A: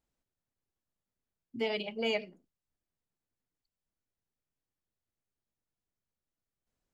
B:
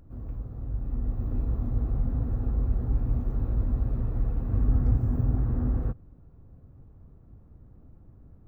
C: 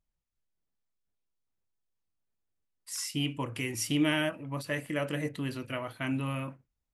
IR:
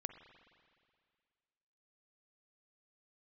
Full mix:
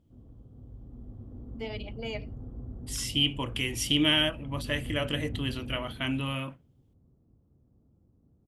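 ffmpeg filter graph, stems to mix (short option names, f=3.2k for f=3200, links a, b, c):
-filter_complex "[0:a]volume=-5.5dB[a];[1:a]bandpass=f=250:t=q:w=0.57:csg=0,volume=-9dB,asplit=2[b][c];[c]volume=-5dB[d];[2:a]equalizer=f=3.2k:t=o:w=0.4:g=13.5,volume=0.5dB[e];[d]aecho=0:1:425:1[f];[a][b][e][f]amix=inputs=4:normalize=0"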